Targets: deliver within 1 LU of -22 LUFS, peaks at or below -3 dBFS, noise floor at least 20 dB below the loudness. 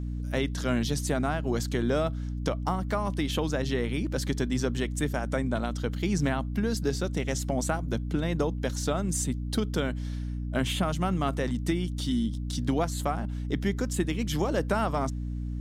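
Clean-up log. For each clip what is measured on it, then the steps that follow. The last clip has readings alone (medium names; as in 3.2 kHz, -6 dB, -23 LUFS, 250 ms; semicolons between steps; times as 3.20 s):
hum 60 Hz; highest harmonic 300 Hz; hum level -30 dBFS; loudness -29.5 LUFS; peak level -14.0 dBFS; loudness target -22.0 LUFS
-> hum notches 60/120/180/240/300 Hz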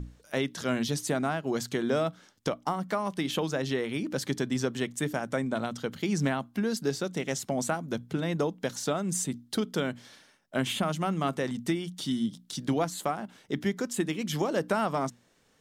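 hum not found; loudness -31.0 LUFS; peak level -15.5 dBFS; loudness target -22.0 LUFS
-> trim +9 dB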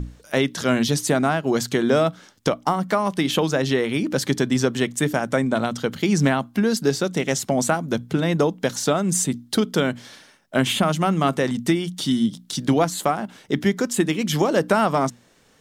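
loudness -22.0 LUFS; peak level -6.5 dBFS; noise floor -56 dBFS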